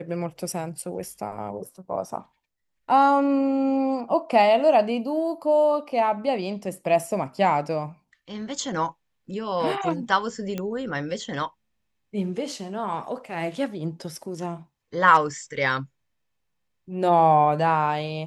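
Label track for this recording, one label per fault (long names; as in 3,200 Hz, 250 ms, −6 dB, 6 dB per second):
10.580000	10.580000	click −16 dBFS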